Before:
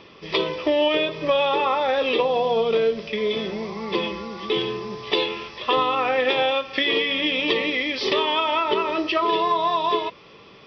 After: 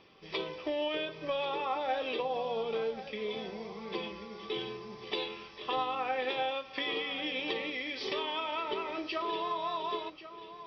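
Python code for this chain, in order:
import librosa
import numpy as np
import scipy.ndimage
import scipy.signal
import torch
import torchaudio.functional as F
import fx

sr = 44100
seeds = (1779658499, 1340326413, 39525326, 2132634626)

p1 = fx.comb_fb(x, sr, f0_hz=780.0, decay_s=0.26, harmonics='all', damping=0.0, mix_pct=80)
y = p1 + fx.echo_single(p1, sr, ms=1088, db=-13.5, dry=0)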